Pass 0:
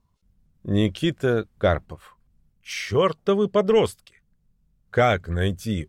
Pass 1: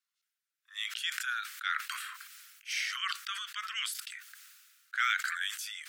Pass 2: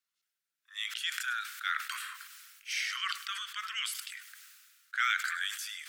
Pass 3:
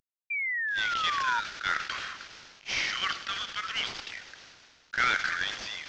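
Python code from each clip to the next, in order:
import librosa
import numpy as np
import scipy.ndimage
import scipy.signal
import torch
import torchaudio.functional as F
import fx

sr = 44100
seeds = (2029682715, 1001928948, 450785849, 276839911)

y1 = scipy.signal.sosfilt(scipy.signal.butter(12, 1300.0, 'highpass', fs=sr, output='sos'), x)
y1 = fx.sustainer(y1, sr, db_per_s=32.0)
y1 = y1 * librosa.db_to_amplitude(-3.0)
y2 = fx.echo_feedback(y1, sr, ms=102, feedback_pct=50, wet_db=-15)
y3 = fx.cvsd(y2, sr, bps=32000)
y3 = fx.spec_paint(y3, sr, seeds[0], shape='fall', start_s=0.3, length_s=1.1, low_hz=920.0, high_hz=2400.0, level_db=-35.0)
y3 = y3 * librosa.db_to_amplitude(4.5)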